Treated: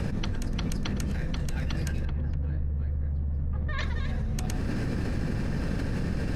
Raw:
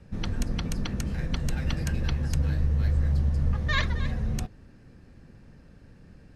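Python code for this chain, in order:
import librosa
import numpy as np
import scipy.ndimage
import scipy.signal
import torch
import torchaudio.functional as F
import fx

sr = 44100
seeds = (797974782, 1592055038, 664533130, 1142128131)

y = fx.spacing_loss(x, sr, db_at_10k=39, at=(2.05, 3.79))
y = y + 10.0 ** (-20.5 / 20.0) * np.pad(y, (int(111 * sr / 1000.0), 0))[:len(y)]
y = fx.env_flatten(y, sr, amount_pct=100)
y = y * librosa.db_to_amplitude(-8.0)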